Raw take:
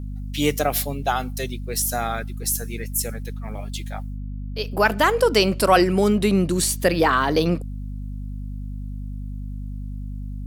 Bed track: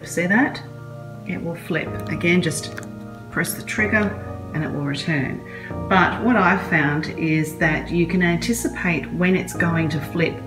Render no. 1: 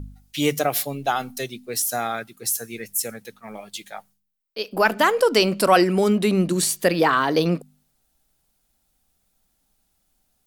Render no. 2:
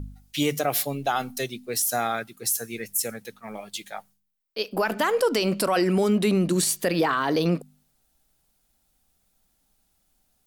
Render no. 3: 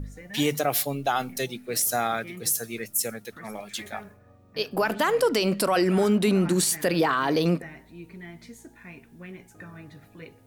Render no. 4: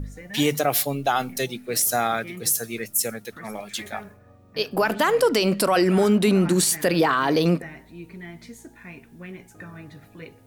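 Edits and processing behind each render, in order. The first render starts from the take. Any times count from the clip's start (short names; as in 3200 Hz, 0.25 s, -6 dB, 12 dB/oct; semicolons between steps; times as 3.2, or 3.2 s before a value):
de-hum 50 Hz, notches 5
limiter -13.5 dBFS, peak gain reduction 9.5 dB
add bed track -24 dB
gain +3 dB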